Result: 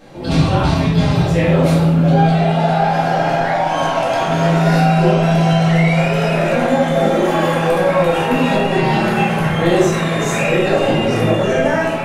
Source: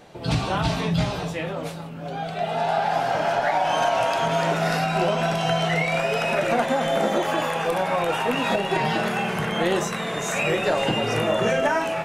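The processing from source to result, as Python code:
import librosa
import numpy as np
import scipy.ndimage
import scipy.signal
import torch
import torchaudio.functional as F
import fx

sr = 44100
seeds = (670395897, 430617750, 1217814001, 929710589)

y = fx.low_shelf(x, sr, hz=440.0, db=4.5)
y = fx.rider(y, sr, range_db=10, speed_s=0.5)
y = fx.room_shoebox(y, sr, seeds[0], volume_m3=240.0, walls='mixed', distance_m=2.2)
y = F.gain(torch.from_numpy(y), -2.0).numpy()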